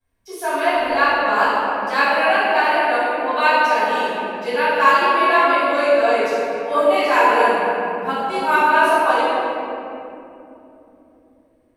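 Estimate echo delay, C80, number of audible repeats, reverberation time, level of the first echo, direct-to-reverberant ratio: no echo, -2.5 dB, no echo, 2.9 s, no echo, -15.5 dB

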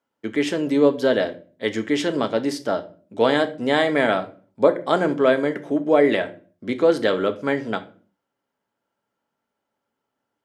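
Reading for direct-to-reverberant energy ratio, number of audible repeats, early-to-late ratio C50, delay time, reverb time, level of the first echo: 7.5 dB, no echo, 16.0 dB, no echo, 0.40 s, no echo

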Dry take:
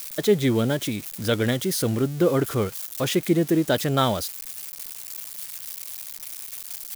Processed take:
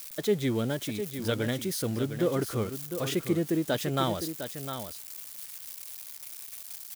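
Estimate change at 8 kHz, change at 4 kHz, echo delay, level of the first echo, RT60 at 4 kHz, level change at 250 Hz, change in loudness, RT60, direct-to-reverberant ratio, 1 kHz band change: -6.5 dB, -6.5 dB, 706 ms, -9.0 dB, no reverb, -6.5 dB, -6.5 dB, no reverb, no reverb, -6.5 dB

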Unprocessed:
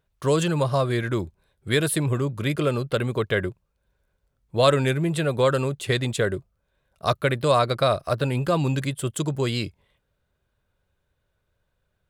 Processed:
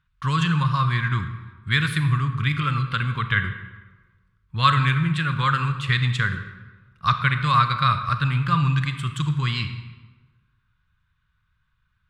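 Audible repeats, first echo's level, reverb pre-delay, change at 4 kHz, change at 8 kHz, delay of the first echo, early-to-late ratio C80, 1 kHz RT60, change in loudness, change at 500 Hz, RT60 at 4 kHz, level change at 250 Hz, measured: no echo, no echo, 31 ms, +2.5 dB, under -10 dB, no echo, 10.5 dB, 1.2 s, +1.5 dB, -19.5 dB, 0.85 s, -1.5 dB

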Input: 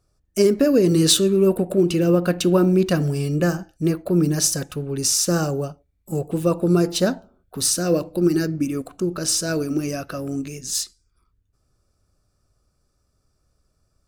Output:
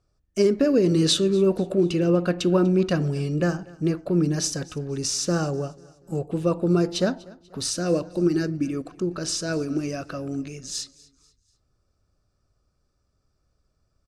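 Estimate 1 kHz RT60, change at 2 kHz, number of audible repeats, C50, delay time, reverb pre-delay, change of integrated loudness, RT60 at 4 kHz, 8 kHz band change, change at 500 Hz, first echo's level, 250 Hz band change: no reverb, -3.0 dB, 2, no reverb, 244 ms, no reverb, -3.5 dB, no reverb, -8.0 dB, -3.0 dB, -22.5 dB, -3.0 dB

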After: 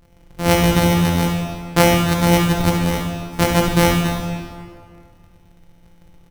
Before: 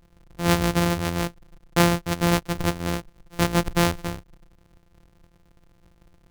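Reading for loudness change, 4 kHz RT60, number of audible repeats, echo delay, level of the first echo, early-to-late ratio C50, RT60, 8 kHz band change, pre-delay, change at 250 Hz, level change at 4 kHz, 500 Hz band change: +6.5 dB, 1.5 s, 1, 70 ms, -8.0 dB, 1.5 dB, 2.0 s, +6.5 dB, 11 ms, +7.0 dB, +6.5 dB, +7.5 dB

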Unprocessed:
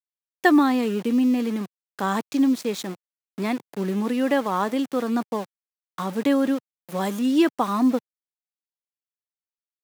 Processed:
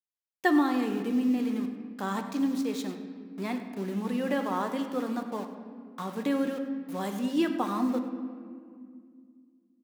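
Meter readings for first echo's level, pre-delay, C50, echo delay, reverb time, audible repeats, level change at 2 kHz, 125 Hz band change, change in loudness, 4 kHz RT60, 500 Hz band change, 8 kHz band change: -15.0 dB, 6 ms, 7.5 dB, 99 ms, 2.1 s, 1, -6.5 dB, -6.0 dB, -7.0 dB, 1.3 s, -7.0 dB, -7.5 dB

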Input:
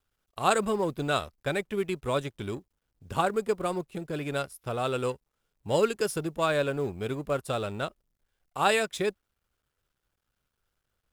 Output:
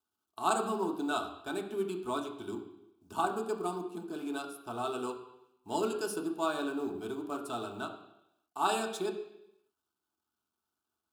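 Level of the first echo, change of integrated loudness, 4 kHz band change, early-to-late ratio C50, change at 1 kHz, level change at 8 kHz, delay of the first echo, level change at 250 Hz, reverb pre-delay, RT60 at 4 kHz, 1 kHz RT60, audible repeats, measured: no echo, -5.5 dB, -6.5 dB, 8.5 dB, -3.5 dB, -4.5 dB, no echo, -2.5 dB, 3 ms, 0.90 s, 0.85 s, no echo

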